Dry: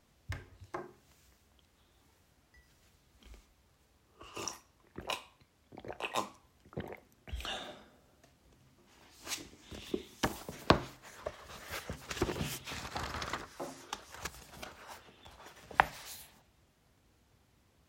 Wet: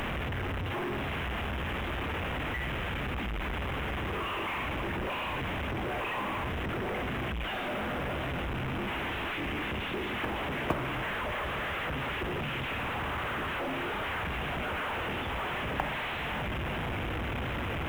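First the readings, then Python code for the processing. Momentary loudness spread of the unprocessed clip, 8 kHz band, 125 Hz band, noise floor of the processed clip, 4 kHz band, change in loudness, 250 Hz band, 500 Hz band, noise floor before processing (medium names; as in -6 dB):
21 LU, -8.0 dB, +11.0 dB, -34 dBFS, +6.5 dB, +6.0 dB, +8.5 dB, +7.5 dB, -70 dBFS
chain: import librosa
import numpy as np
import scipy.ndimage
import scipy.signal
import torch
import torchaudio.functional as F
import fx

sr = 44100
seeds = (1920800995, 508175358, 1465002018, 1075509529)

y = fx.delta_mod(x, sr, bps=16000, step_db=-22.0)
y = fx.quant_companded(y, sr, bits=6)
y = F.gain(torch.from_numpy(y), -5.0).numpy()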